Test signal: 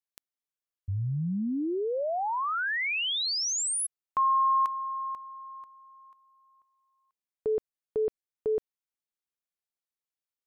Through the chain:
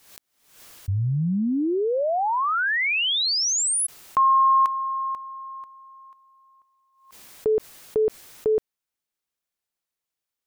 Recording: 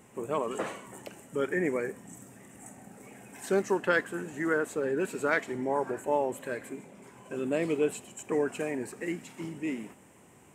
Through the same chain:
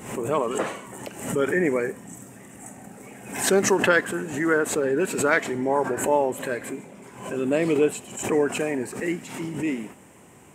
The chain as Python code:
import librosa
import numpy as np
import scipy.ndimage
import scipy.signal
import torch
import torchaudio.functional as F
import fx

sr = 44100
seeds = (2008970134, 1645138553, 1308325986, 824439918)

y = fx.pre_swell(x, sr, db_per_s=86.0)
y = F.gain(torch.from_numpy(y), 6.5).numpy()